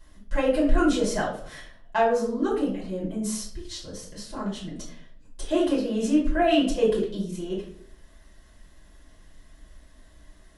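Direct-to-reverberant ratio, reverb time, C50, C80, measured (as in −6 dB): −7.0 dB, 0.60 s, 5.5 dB, 9.5 dB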